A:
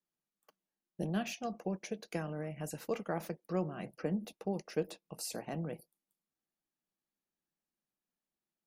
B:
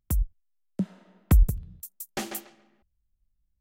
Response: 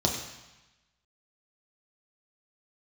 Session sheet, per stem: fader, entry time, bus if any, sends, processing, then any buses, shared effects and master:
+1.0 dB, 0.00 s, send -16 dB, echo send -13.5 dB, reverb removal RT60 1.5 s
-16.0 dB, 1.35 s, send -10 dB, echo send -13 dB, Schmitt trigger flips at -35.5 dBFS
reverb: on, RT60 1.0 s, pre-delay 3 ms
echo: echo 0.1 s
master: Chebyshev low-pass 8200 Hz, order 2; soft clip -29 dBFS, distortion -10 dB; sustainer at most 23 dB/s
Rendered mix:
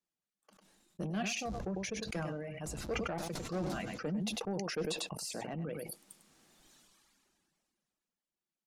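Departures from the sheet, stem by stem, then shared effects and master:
stem A: send off; stem B -16.0 dB -> -24.5 dB

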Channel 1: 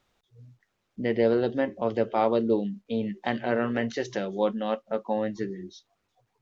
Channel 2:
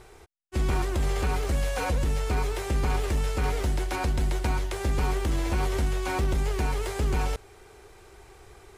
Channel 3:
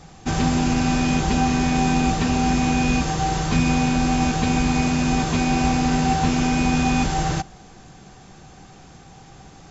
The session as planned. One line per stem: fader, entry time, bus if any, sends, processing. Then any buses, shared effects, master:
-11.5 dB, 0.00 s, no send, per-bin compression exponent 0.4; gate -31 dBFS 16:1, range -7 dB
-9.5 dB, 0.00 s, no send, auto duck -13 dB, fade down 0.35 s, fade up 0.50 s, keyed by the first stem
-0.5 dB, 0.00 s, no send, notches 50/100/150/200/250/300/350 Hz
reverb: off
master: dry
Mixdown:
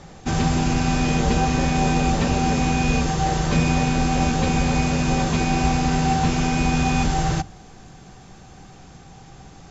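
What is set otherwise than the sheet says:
stem 1: missing gate -31 dBFS 16:1, range -7 dB; stem 2 -9.5 dB -> -18.5 dB; master: extra low shelf 210 Hz +4 dB

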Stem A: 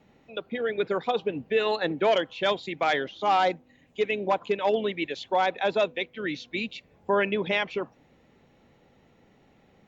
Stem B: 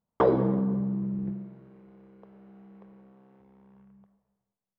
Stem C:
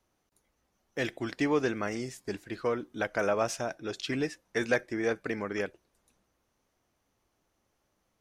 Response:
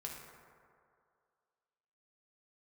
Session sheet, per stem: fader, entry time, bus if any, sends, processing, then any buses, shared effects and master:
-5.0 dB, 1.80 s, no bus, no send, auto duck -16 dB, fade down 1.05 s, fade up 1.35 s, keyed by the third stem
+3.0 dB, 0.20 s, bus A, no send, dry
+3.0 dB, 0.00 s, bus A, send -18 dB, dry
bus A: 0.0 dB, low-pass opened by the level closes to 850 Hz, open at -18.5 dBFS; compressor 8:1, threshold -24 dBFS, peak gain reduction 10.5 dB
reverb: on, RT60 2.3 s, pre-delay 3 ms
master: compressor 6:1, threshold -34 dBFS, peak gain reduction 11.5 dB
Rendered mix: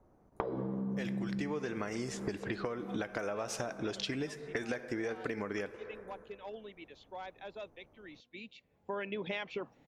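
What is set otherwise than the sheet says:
stem B +3.0 dB -> +15.0 dB; stem C +3.0 dB -> +12.5 dB

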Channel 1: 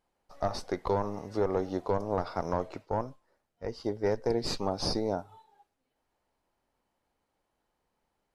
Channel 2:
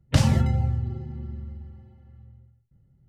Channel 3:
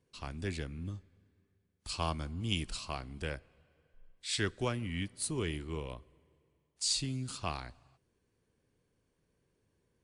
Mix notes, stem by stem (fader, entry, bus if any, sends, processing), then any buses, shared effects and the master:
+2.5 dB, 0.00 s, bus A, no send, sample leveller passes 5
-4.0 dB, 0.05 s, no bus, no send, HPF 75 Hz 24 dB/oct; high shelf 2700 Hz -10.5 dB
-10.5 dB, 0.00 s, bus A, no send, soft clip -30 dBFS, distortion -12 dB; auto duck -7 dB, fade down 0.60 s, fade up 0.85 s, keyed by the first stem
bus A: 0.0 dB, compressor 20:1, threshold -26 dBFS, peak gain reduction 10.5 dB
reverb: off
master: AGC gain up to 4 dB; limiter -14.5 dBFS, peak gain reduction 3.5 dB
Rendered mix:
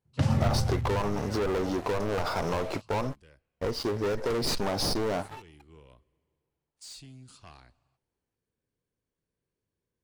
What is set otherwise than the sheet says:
stem 1 +2.5 dB -> -4.0 dB; master: missing AGC gain up to 4 dB

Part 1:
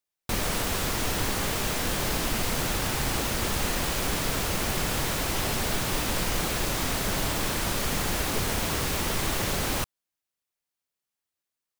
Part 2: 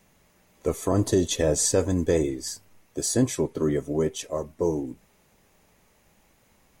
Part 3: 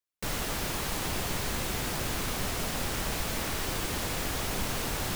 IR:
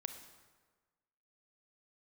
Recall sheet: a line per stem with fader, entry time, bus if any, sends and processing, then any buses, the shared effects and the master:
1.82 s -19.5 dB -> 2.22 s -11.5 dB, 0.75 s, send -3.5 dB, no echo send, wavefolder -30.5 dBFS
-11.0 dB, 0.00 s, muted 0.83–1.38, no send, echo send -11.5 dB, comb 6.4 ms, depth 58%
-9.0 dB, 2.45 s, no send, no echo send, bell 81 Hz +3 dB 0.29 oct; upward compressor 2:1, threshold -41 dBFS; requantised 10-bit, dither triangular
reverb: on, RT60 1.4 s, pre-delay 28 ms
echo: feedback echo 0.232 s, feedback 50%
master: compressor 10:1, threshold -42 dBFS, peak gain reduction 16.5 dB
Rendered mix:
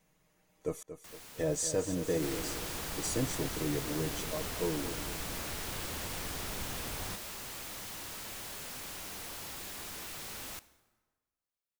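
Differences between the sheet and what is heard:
stem 3: entry 2.45 s -> 2.00 s; master: missing compressor 10:1, threshold -42 dBFS, peak gain reduction 16.5 dB

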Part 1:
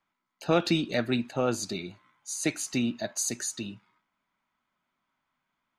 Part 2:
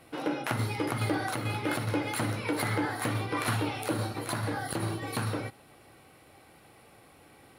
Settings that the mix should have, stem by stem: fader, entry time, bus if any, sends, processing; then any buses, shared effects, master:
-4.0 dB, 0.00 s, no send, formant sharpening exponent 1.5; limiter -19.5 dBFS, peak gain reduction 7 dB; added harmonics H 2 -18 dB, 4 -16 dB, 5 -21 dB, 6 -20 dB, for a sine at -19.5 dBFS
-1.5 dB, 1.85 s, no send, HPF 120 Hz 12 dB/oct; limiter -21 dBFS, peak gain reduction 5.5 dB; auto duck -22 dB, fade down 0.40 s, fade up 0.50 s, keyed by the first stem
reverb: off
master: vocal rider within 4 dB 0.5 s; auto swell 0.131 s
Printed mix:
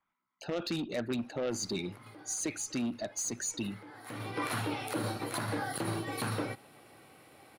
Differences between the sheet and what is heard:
stem 2: entry 1.85 s -> 1.05 s; master: missing auto swell 0.131 s

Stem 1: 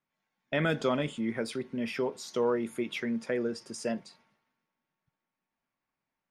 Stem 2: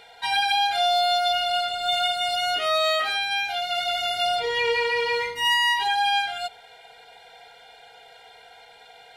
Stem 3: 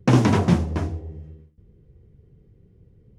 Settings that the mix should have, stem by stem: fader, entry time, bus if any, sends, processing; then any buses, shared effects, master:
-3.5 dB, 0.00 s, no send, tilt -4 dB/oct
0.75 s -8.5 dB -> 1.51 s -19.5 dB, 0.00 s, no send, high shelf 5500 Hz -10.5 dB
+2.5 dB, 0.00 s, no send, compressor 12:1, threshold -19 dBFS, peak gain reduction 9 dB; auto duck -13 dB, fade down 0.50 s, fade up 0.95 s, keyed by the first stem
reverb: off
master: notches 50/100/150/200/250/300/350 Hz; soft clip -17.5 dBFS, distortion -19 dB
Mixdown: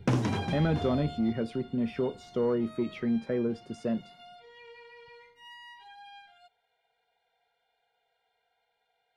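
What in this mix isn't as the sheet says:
stem 2 -8.5 dB -> -16.0 dB; master: missing notches 50/100/150/200/250/300/350 Hz

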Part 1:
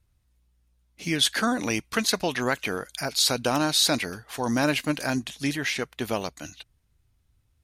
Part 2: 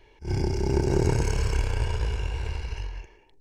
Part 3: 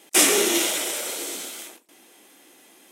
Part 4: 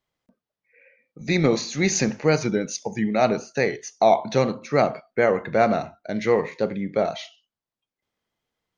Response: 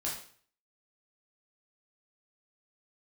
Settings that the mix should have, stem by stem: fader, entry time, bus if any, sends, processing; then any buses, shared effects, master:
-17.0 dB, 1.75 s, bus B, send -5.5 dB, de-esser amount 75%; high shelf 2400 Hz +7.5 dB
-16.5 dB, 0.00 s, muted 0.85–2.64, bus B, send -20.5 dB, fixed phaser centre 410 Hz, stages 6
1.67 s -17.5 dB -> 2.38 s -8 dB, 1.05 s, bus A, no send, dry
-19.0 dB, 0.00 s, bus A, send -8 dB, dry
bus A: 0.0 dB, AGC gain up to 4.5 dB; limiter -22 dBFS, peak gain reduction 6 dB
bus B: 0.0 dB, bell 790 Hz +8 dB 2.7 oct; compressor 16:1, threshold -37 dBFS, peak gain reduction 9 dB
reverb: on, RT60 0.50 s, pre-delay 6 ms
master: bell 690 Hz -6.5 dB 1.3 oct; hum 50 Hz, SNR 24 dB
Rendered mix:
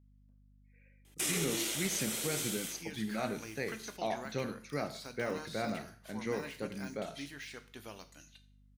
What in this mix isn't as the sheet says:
stem 1 -17.0 dB -> -24.5 dB; stem 2: muted

